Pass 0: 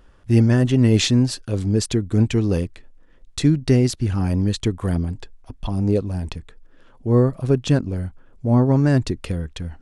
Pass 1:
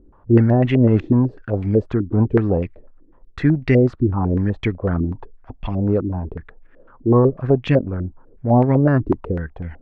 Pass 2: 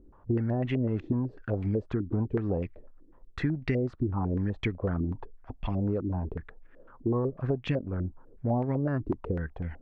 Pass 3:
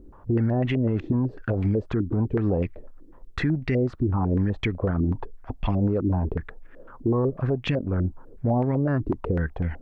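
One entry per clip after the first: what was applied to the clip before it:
stepped low-pass 8 Hz 330–2200 Hz
compressor 6:1, threshold -20 dBFS, peak gain reduction 12 dB; gain -5 dB
limiter -23.5 dBFS, peak gain reduction 7 dB; gain +8 dB

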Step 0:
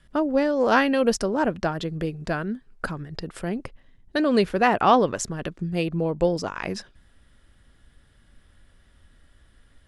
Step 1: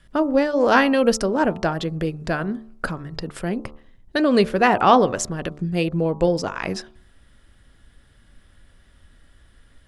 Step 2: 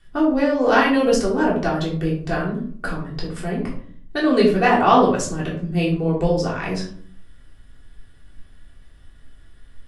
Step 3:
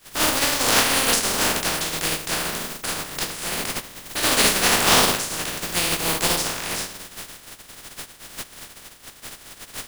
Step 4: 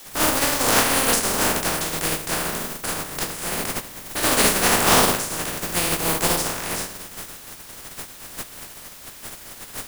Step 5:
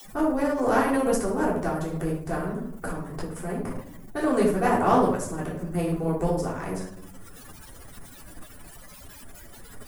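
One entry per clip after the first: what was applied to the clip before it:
de-hum 73.95 Hz, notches 18; gain +3.5 dB
reverb RT60 0.45 s, pre-delay 3 ms, DRR -5 dB; gain -6 dB
spectral contrast lowered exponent 0.18; gain -2.5 dB
bell 3700 Hz -6 dB 1.9 oct; in parallel at -6.5 dB: requantised 6-bit, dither triangular; on the sum: gain -1 dB
spectral contrast raised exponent 3.4; gain -2.5 dB

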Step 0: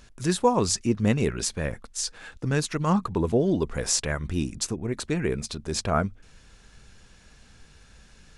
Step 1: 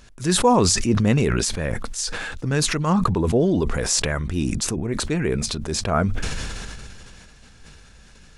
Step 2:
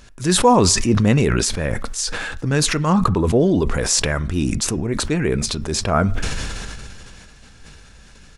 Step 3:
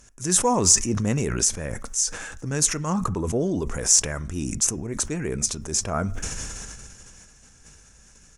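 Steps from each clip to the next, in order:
sustainer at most 22 dB/s; gain +2.5 dB
on a send at -19 dB: comb 7.2 ms, depth 88% + reverb RT60 0.60 s, pre-delay 3 ms; on the sum: gain +3 dB
resonant high shelf 5100 Hz +6.5 dB, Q 3; added harmonics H 7 -35 dB, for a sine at 6.5 dBFS; gain -7.5 dB

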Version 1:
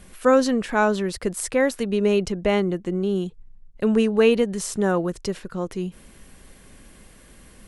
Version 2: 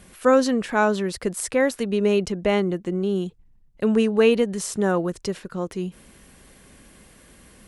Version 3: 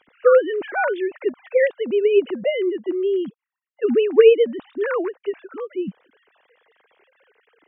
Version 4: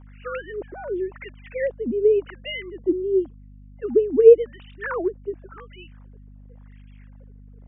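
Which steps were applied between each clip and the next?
HPF 58 Hz 6 dB/oct
sine-wave speech; gain +2.5 dB
wah 0.91 Hz 240–2900 Hz, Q 3.4; hum 50 Hz, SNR 22 dB; gain +5 dB

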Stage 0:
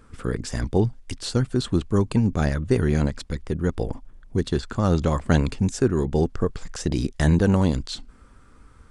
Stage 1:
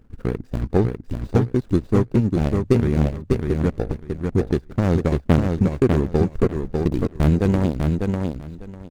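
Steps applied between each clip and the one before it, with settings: median filter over 41 samples; transient shaper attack +5 dB, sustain -9 dB; on a send: feedback echo 0.598 s, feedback 18%, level -4 dB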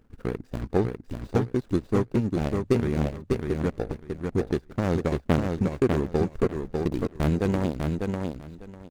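low shelf 220 Hz -7 dB; gain -2.5 dB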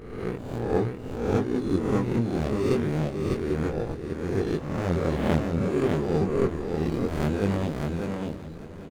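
spectral swells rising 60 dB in 0.92 s; chorus 0.66 Hz, delay 19.5 ms, depth 6.1 ms; feedback echo 0.79 s, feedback 52%, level -16 dB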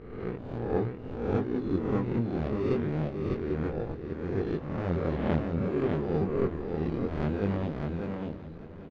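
air absorption 230 m; gain -3.5 dB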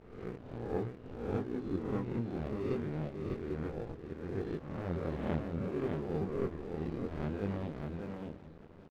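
crossover distortion -50 dBFS; gain -6.5 dB

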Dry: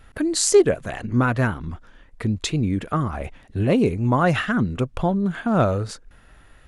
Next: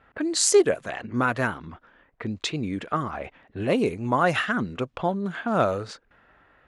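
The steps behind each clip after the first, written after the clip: HPF 110 Hz 6 dB/oct; low-pass opened by the level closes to 1800 Hz, open at -16.5 dBFS; low shelf 250 Hz -10 dB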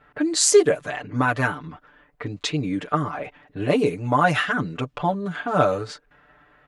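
comb 6.8 ms, depth 97%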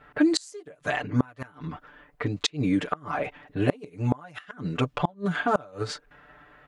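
flipped gate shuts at -12 dBFS, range -30 dB; gain +2.5 dB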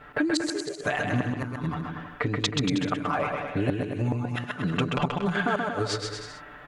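compressor, threshold -30 dBFS, peak gain reduction 14 dB; bouncing-ball echo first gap 0.13 s, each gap 0.8×, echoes 5; gain +6 dB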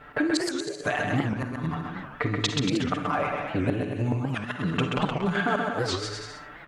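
on a send at -8.5 dB: reverb RT60 0.35 s, pre-delay 43 ms; on the sum: record warp 78 rpm, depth 250 cents

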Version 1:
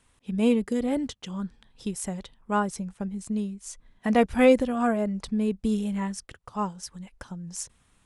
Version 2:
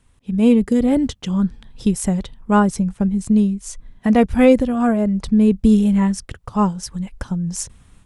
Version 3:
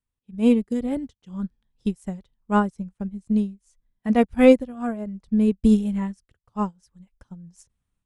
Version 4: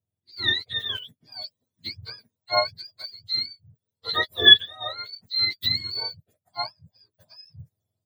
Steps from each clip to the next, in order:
low shelf 260 Hz +11 dB; AGC gain up to 8 dB
upward expander 2.5:1, over -28 dBFS
spectrum mirrored in octaves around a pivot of 940 Hz; notch comb 290 Hz; small resonant body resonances 610/3400 Hz, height 12 dB, ringing for 40 ms; gain -1 dB

